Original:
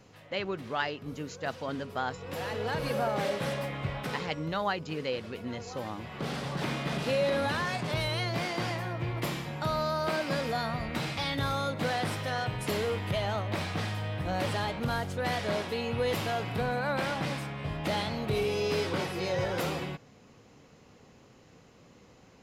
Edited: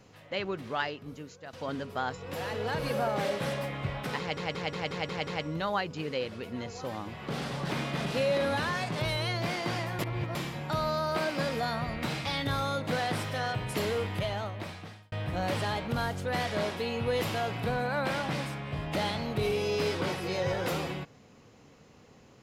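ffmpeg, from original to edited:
-filter_complex "[0:a]asplit=11[s0][s1][s2][s3][s4][s5][s6][s7][s8][s9][s10];[s0]atrim=end=1.53,asetpts=PTS-STARTPTS,afade=t=out:st=0.75:d=0.78:silence=0.211349[s11];[s1]atrim=start=1.53:end=4.372,asetpts=PTS-STARTPTS,afade=t=in:d=0.004:c=hsin:silence=0.211349[s12];[s2]atrim=start=4.188:end=4.372[s13];[s3]atrim=start=4.188:end=4.372[s14];[s4]atrim=start=4.188:end=4.372[s15];[s5]atrim=start=4.188:end=4.372[s16];[s6]atrim=start=4.188:end=4.372[s17];[s7]atrim=start=4.188:end=8.912[s18];[s8]atrim=start=8.908:end=9.272,asetpts=PTS-STARTPTS,areverse[s19];[s9]atrim=start=9.268:end=14.04,asetpts=PTS-STARTPTS,afade=t=out:st=3.732:d=1.04[s20];[s10]atrim=start=14.04,asetpts=PTS-STARTPTS,afade=t=in:d=0.004:c=hsin[s21];[s11][s12]concat=n=2:v=0:a=1[s22];[s22][s13]acrossfade=d=0.004:c1=hsin:c2=hsin[s23];[s23][s14]acrossfade=d=0.004:c1=hsin:c2=hsin[s24];[s24][s15]acrossfade=d=0.004:c1=hsin:c2=hsin[s25];[s25][s16]acrossfade=d=0.004:c1=hsin:c2=hsin[s26];[s26][s17]acrossfade=d=0.004:c1=hsin:c2=hsin[s27];[s27][s18]acrossfade=d=0.004:c1=hsin:c2=hsin[s28];[s28][s19]acrossfade=d=0.004:c1=hsin:c2=hsin[s29];[s20][s21]concat=n=2:v=0:a=1[s30];[s29][s30]acrossfade=d=0.004:c1=hsin:c2=hsin"

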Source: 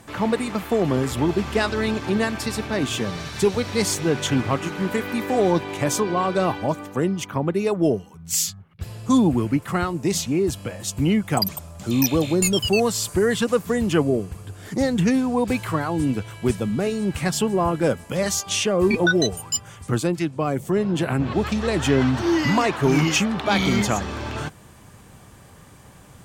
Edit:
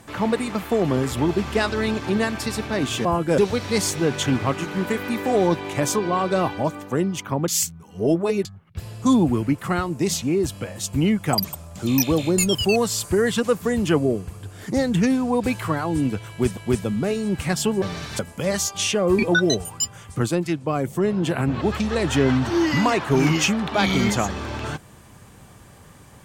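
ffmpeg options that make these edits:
-filter_complex "[0:a]asplit=8[s0][s1][s2][s3][s4][s5][s6][s7];[s0]atrim=end=3.052[s8];[s1]atrim=start=17.578:end=17.912[s9];[s2]atrim=start=3.418:end=7.522[s10];[s3]atrim=start=7.518:end=8.492,asetpts=PTS-STARTPTS,areverse[s11];[s4]atrim=start=8.488:end=16.612[s12];[s5]atrim=start=16.328:end=17.582[s13];[s6]atrim=start=3.048:end=3.422[s14];[s7]atrim=start=17.908[s15];[s8][s9]acrossfade=d=0.004:c1=hsin:c2=hsin[s16];[s16][s10]acrossfade=d=0.004:c1=hsin:c2=hsin[s17];[s17][s11]acrossfade=d=0.004:c1=hsin:c2=hsin[s18];[s18][s12]acrossfade=d=0.004:c1=hsin:c2=hsin[s19];[s19][s13]acrossfade=d=0.004:c1=hsin:c2=hsin[s20];[s20][s14]acrossfade=d=0.004:c1=hsin:c2=hsin[s21];[s21][s15]acrossfade=d=0.004:c1=hsin:c2=hsin"

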